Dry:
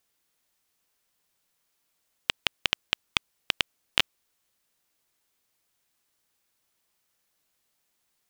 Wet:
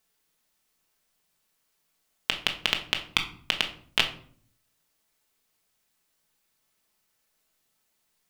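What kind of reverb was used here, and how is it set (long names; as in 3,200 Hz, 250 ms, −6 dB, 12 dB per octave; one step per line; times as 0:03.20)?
rectangular room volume 590 cubic metres, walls furnished, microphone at 1.5 metres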